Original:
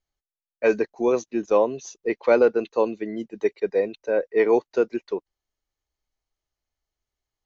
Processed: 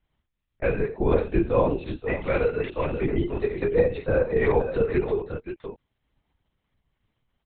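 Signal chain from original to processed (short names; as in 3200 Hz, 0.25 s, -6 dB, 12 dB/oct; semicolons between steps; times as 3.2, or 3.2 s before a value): 1.94–2.97 bell 590 Hz -12 dB 2.5 oct; in parallel at +1 dB: compressor, threshold -30 dBFS, peak gain reduction 15 dB; on the sum: limiter -13.5 dBFS, peak gain reduction 7 dB; chorus voices 6, 0.66 Hz, delay 29 ms, depth 4.4 ms; on a send: tapped delay 68/92/530 ms -10.5/-20/-10 dB; on the sum: LPC vocoder at 8 kHz whisper; gain +3.5 dB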